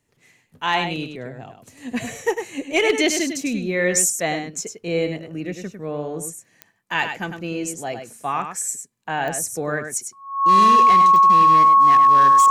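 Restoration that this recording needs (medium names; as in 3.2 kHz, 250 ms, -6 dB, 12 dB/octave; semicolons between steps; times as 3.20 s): clip repair -9 dBFS; de-click; band-stop 1.1 kHz, Q 30; inverse comb 101 ms -7.5 dB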